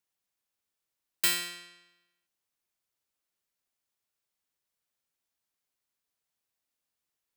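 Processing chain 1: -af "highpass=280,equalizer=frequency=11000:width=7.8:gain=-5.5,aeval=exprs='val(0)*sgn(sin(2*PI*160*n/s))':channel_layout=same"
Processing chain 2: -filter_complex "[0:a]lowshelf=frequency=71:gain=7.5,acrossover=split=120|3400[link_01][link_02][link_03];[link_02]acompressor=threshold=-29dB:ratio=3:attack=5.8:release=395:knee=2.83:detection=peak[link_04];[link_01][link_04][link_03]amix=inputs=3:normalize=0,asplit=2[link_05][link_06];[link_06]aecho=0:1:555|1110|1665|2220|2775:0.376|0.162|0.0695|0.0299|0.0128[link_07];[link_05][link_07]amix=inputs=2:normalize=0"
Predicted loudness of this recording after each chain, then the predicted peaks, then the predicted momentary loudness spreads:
−29.0, −32.5 LKFS; −12.5, −11.0 dBFS; 16, 23 LU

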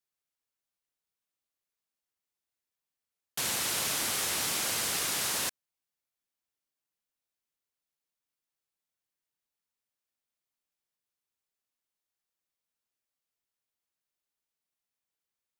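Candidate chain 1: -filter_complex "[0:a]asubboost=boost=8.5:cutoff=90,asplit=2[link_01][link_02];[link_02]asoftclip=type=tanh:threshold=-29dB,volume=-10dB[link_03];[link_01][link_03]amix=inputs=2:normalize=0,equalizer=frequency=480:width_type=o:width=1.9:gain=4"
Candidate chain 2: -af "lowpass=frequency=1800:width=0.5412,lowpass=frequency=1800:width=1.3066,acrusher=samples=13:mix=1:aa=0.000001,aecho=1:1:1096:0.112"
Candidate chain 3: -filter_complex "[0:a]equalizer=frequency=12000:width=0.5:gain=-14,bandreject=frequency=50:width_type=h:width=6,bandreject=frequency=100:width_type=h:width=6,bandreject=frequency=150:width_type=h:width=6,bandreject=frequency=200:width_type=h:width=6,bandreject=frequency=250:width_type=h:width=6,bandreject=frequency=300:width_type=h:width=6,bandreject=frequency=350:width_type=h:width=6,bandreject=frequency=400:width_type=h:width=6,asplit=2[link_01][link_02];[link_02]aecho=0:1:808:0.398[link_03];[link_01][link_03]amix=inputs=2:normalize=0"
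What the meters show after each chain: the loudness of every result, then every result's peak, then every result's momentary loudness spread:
−27.0, −39.5, −35.0 LKFS; −16.0, −27.0, −22.0 dBFS; 4, 20, 10 LU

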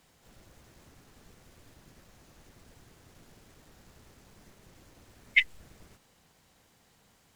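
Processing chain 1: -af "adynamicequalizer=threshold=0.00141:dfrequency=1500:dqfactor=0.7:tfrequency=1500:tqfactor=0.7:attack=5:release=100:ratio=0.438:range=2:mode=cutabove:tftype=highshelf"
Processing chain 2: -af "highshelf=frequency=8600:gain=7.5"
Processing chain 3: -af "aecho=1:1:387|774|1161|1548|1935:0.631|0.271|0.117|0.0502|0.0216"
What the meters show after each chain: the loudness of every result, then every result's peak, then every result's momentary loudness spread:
−27.0, −26.5, −30.0 LKFS; −8.5, −8.0, −8.5 dBFS; 8, 8, 19 LU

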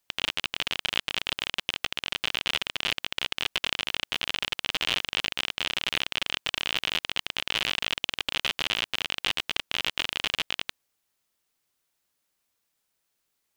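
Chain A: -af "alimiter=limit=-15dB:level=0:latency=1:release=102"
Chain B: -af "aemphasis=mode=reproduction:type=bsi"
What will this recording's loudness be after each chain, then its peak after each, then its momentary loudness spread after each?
−33.5, −31.0 LKFS; −15.0, −5.5 dBFS; 3, 3 LU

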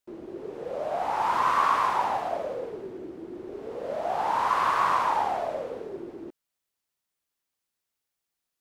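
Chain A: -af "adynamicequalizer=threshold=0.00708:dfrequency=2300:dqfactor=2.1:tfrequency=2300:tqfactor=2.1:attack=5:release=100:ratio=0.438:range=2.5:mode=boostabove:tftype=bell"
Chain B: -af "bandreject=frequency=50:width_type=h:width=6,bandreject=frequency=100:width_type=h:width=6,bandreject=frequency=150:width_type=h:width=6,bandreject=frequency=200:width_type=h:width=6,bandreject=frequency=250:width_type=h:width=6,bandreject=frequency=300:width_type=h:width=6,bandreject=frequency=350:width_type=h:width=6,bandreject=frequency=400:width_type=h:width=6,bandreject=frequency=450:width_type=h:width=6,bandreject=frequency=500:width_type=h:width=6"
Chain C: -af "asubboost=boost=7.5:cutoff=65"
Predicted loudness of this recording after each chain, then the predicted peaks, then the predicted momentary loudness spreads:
−26.5, −26.5, −27.0 LKFS; −10.5, −11.0, −11.0 dBFS; 17, 18, 18 LU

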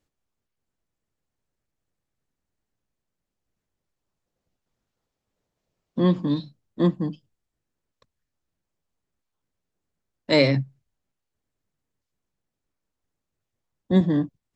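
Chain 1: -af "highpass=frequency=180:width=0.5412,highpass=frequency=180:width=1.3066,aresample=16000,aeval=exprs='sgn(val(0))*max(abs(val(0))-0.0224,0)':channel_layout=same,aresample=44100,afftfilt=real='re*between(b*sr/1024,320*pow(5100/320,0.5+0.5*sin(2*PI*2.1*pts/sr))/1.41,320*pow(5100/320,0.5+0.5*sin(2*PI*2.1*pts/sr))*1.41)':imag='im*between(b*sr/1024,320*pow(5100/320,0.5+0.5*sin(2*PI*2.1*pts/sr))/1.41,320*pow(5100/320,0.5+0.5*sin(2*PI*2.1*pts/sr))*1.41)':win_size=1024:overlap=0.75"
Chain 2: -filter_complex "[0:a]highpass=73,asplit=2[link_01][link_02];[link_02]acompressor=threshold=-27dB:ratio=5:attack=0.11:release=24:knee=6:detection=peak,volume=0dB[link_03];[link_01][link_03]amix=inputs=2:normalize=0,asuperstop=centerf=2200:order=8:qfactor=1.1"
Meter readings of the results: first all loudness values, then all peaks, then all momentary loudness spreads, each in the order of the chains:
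−30.5, −21.0 LKFS; −13.0, −5.5 dBFS; 21, 17 LU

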